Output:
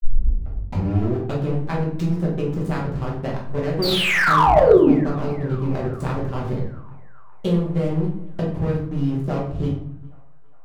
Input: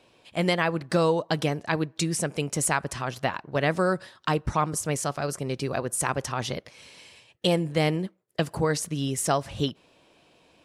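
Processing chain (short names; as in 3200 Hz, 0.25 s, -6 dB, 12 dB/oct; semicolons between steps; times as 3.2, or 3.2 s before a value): tape start at the beginning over 1.48 s; expander -50 dBFS; tilt -3 dB/oct; compressor 6:1, threshold -20 dBFS, peak gain reduction 12 dB; backlash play -24 dBFS; painted sound fall, 3.82–4.91, 240–4800 Hz -16 dBFS; narrowing echo 0.41 s, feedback 74%, band-pass 1200 Hz, level -23 dB; reverb RT60 0.55 s, pre-delay 5 ms, DRR -4 dB; slew limiter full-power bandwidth 410 Hz; gain -3 dB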